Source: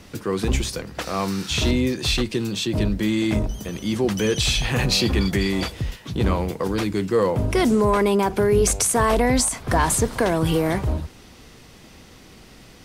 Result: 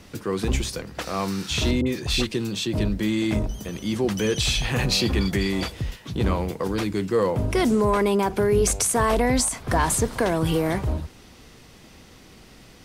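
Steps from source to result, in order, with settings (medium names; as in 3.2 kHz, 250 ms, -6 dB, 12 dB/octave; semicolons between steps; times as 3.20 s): 1.81–2.27 s: phase dispersion highs, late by 55 ms, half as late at 1.1 kHz; trim -2 dB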